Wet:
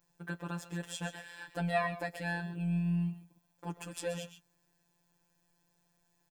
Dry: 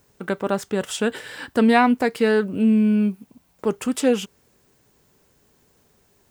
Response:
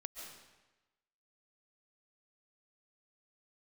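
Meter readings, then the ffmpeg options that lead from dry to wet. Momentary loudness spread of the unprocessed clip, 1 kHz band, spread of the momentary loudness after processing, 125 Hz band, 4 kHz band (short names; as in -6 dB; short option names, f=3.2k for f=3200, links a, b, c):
11 LU, -15.5 dB, 13 LU, -4.0 dB, -14.0 dB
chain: -filter_complex "[1:a]atrim=start_sample=2205,atrim=end_sample=6174[a];[0:a][a]afir=irnorm=-1:irlink=0,afftfilt=real='hypot(re,im)*cos(PI*b)':imag='0':win_size=1024:overlap=0.75,aecho=1:1:7:0.64,volume=-6.5dB"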